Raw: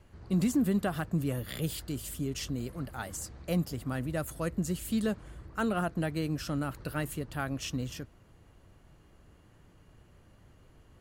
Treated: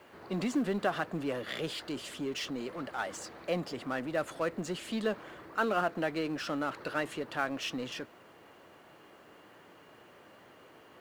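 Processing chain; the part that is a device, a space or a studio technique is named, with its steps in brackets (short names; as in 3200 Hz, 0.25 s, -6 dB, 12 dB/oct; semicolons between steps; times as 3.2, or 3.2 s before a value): phone line with mismatched companding (BPF 390–3600 Hz; G.711 law mismatch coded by mu); gain +2.5 dB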